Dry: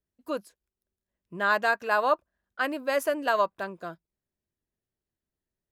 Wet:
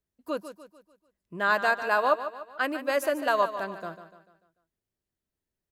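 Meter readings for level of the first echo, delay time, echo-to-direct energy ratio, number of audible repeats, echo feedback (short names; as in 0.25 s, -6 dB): -11.5 dB, 0.147 s, -10.5 dB, 4, 45%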